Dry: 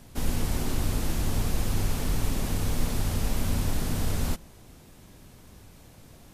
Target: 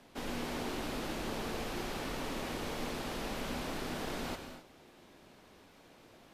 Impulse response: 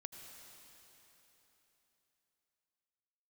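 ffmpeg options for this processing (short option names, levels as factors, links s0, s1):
-filter_complex "[0:a]acrossover=split=240 4700:gain=0.126 1 0.224[s0][s1][s2];[s0][s1][s2]amix=inputs=3:normalize=0[s3];[1:a]atrim=start_sample=2205,afade=t=out:st=0.33:d=0.01,atrim=end_sample=14994[s4];[s3][s4]afir=irnorm=-1:irlink=0,volume=1.5"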